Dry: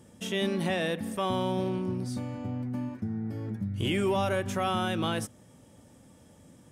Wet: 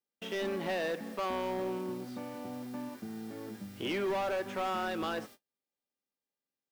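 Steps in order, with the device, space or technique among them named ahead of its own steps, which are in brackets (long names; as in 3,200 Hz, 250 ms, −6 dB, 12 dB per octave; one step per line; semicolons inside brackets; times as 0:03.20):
aircraft radio (band-pass filter 340–2,600 Hz; hard clipping −29 dBFS, distortion −10 dB; hum with harmonics 400 Hz, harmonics 14, −63 dBFS −1 dB per octave; white noise bed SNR 23 dB; noise gate −50 dBFS, range −40 dB)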